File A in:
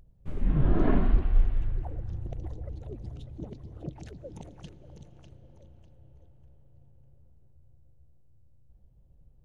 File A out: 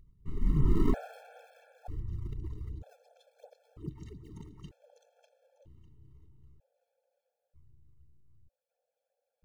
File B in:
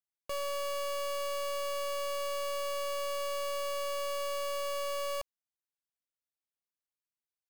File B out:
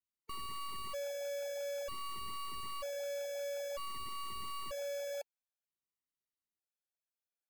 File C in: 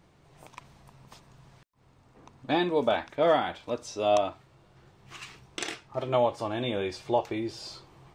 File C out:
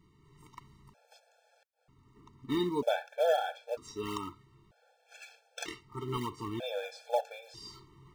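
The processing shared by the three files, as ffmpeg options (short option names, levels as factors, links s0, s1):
-filter_complex "[0:a]asplit=2[s0][s1];[s1]acrusher=samples=23:mix=1:aa=0.000001:lfo=1:lforange=36.8:lforate=2.8,volume=0.251[s2];[s0][s2]amix=inputs=2:normalize=0,afftfilt=real='re*gt(sin(2*PI*0.53*pts/sr)*(1-2*mod(floor(b*sr/1024/450),2)),0)':imag='im*gt(sin(2*PI*0.53*pts/sr)*(1-2*mod(floor(b*sr/1024/450),2)),0)':win_size=1024:overlap=0.75,volume=0.631"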